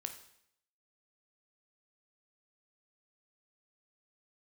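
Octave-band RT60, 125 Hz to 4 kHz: 0.75 s, 0.70 s, 0.70 s, 0.70 s, 0.70 s, 0.70 s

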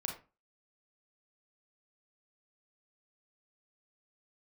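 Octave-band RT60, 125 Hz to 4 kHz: 0.35 s, 0.35 s, 0.30 s, 0.30 s, 0.25 s, 0.20 s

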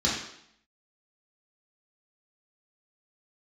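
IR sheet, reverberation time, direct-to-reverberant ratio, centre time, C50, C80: 0.70 s, -7.0 dB, 51 ms, 2.5 dB, 5.5 dB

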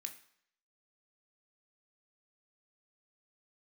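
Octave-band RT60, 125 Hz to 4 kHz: 0.55 s, 0.60 s, 0.65 s, 0.70 s, 0.70 s, 0.65 s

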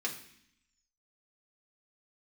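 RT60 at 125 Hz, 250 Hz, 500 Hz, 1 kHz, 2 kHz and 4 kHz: 0.90 s, 1.0 s, 0.60 s, 0.65 s, 0.85 s, 0.85 s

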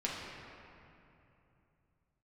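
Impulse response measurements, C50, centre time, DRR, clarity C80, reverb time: -0.5 dB, 133 ms, -5.5 dB, 1.0 dB, 2.9 s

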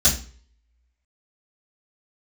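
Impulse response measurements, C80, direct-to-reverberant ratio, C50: 14.5 dB, -11.5 dB, 9.5 dB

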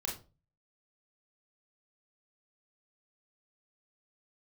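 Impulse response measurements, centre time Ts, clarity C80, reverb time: 26 ms, 14.0 dB, 0.35 s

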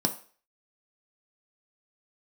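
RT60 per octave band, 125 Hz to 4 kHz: 0.30 s, 0.35 s, 0.45 s, 0.45 s, 0.45 s, 0.45 s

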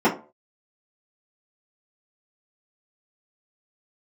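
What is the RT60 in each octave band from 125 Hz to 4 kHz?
0.35 s, 0.35 s, 0.40 s, 0.35 s, 0.25 s, 0.20 s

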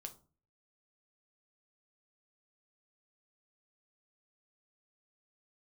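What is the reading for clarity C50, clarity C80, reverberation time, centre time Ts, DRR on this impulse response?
15.0 dB, 21.0 dB, 0.40 s, 7 ms, 5.0 dB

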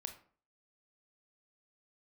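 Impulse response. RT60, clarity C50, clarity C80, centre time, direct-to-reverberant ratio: 0.45 s, 10.5 dB, 15.0 dB, 12 ms, 6.0 dB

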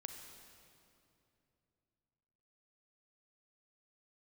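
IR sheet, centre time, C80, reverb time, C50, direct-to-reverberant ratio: 56 ms, 6.0 dB, 2.8 s, 5.0 dB, 4.5 dB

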